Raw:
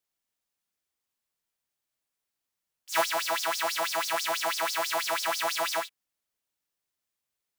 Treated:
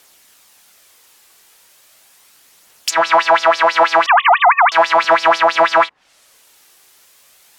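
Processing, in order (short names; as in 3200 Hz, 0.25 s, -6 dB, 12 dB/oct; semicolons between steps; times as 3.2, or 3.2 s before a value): 4.06–4.72 sine-wave speech; phaser 0.37 Hz, delay 2.7 ms, feedback 24%; low shelf 250 Hz -12 dB; negative-ratio compressor -35 dBFS, ratio -1; treble ducked by the level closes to 1100 Hz, closed at -34.5 dBFS; maximiser +33 dB; gain -1 dB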